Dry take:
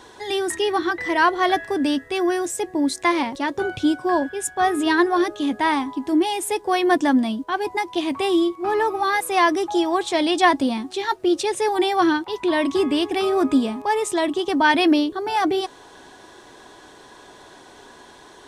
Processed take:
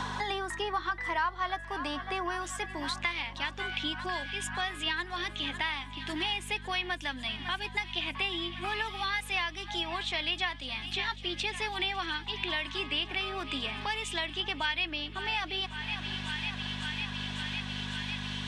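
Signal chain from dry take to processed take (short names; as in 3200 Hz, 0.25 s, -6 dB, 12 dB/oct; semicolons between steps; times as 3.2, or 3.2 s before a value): band-pass sweep 1100 Hz -> 2800 Hz, 2.38–2.91; hum 50 Hz, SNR 13 dB; on a send: thinning echo 0.551 s, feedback 82%, high-pass 740 Hz, level -18 dB; on the sum: three-band squash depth 100%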